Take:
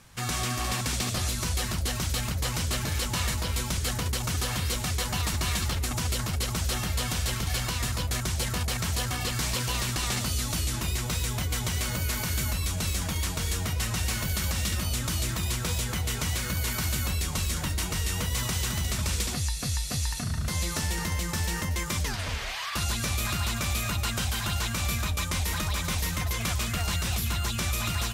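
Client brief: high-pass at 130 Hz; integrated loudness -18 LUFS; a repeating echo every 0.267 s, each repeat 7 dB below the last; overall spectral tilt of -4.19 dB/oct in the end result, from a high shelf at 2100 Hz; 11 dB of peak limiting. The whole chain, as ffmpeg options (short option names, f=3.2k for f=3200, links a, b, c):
-af "highpass=130,highshelf=f=2.1k:g=-7.5,alimiter=level_in=7dB:limit=-24dB:level=0:latency=1,volume=-7dB,aecho=1:1:267|534|801|1068|1335:0.447|0.201|0.0905|0.0407|0.0183,volume=20.5dB"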